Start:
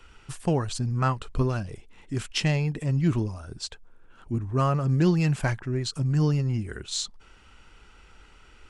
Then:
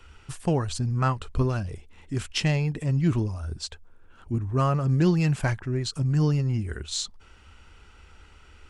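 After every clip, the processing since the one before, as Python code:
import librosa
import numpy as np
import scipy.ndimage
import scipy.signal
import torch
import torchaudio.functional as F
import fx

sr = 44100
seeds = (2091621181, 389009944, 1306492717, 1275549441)

y = fx.peak_eq(x, sr, hz=78.0, db=12.5, octaves=0.35)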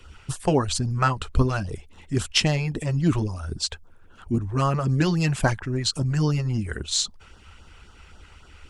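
y = fx.hpss(x, sr, part='percussive', gain_db=8)
y = fx.filter_lfo_notch(y, sr, shape='sine', hz=3.7, low_hz=230.0, high_hz=2400.0, q=1.4)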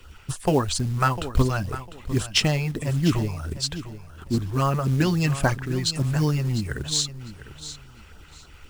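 y = fx.quant_companded(x, sr, bits=6)
y = fx.echo_feedback(y, sr, ms=701, feedback_pct=22, wet_db=-13.5)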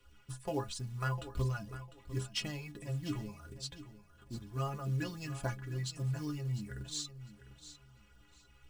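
y = fx.stiff_resonator(x, sr, f0_hz=61.0, decay_s=0.36, stiffness=0.03)
y = y * librosa.db_to_amplitude(-7.5)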